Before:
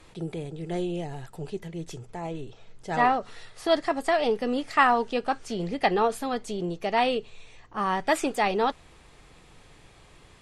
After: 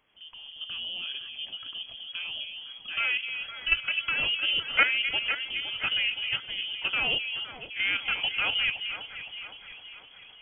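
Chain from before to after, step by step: opening faded in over 0.80 s; level quantiser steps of 9 dB; added noise white -64 dBFS; on a send: echo with dull and thin repeats by turns 0.257 s, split 1100 Hz, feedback 70%, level -6.5 dB; on the sum: inverted band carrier 3300 Hz

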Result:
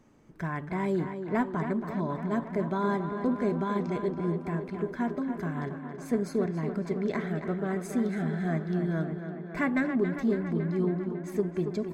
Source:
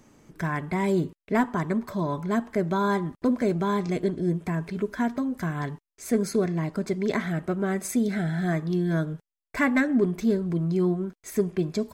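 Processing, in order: high shelf 3900 Hz -10 dB; on a send: tape echo 0.277 s, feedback 81%, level -7 dB, low-pass 3300 Hz; on the sum: gain -4.5 dB

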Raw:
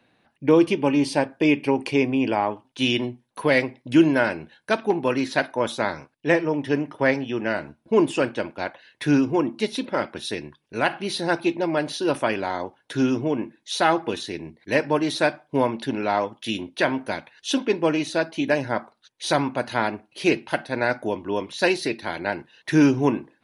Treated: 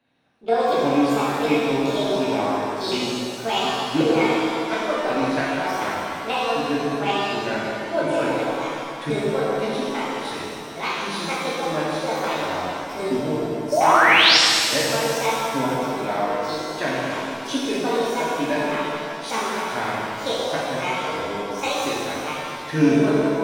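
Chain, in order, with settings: trilling pitch shifter +7 st, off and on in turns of 0.364 s; in parallel at -8 dB: backlash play -23.5 dBFS; on the sum: darkening echo 0.152 s, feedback 69%, level -9 dB; painted sound rise, 13.72–14.37, 560–5800 Hz -11 dBFS; shimmer reverb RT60 2 s, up +7 st, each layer -8 dB, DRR -6.5 dB; gain -10.5 dB

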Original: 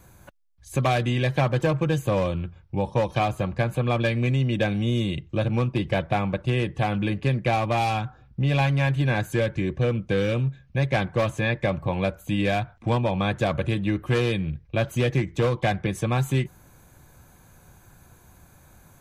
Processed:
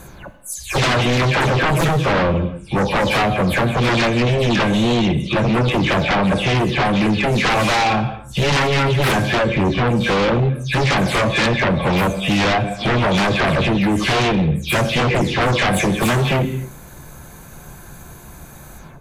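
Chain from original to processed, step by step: spectral delay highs early, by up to 0.212 s; non-linear reverb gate 0.32 s falling, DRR 9 dB; sine folder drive 13 dB, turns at -10.5 dBFS; gain -2.5 dB

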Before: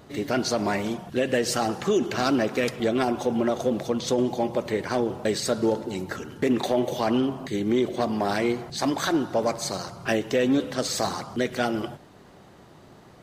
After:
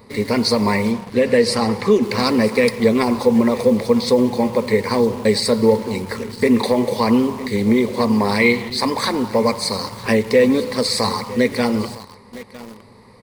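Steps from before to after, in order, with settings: ripple EQ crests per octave 0.92, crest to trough 14 dB; echo 0.958 s -18 dB; in parallel at -5.5 dB: requantised 6-bit, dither none; 0.91–2.03 on the sum: high shelf 9900 Hz -10 dB; 8.4–8.74 spectral gain 1800–4300 Hz +8 dB; gain +1.5 dB

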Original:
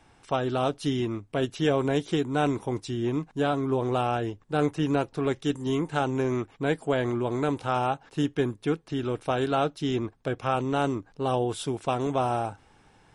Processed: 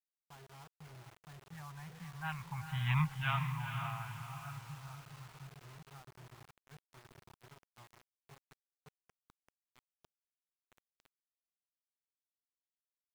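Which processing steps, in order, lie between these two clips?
Doppler pass-by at 2.98, 20 m/s, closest 2.4 m; gate with hold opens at -59 dBFS; elliptic band-stop 160–900 Hz, stop band 60 dB; low-pass opened by the level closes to 560 Hz, open at -36 dBFS; synth low-pass 2400 Hz, resonance Q 2.4; diffused feedback echo 0.47 s, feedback 42%, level -6.5 dB; requantised 10-bit, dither none; gain +4.5 dB

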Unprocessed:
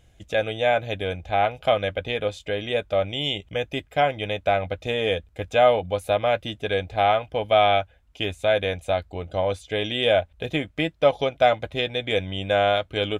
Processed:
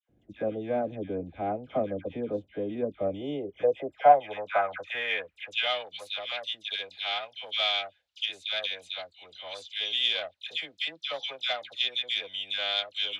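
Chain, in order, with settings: dispersion lows, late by 95 ms, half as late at 1400 Hz; added harmonics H 4 -26 dB, 7 -32 dB, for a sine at -5 dBFS; band-pass sweep 270 Hz -> 4000 Hz, 3.03–5.87; gain +5.5 dB

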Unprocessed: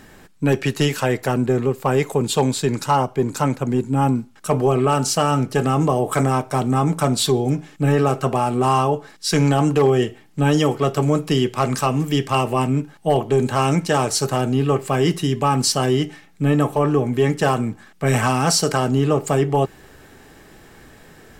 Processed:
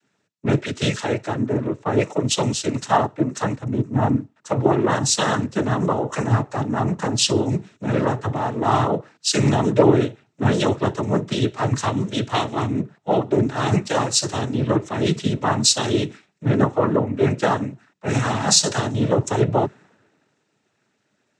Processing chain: noise vocoder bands 12; three-band expander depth 70%; gain -1.5 dB

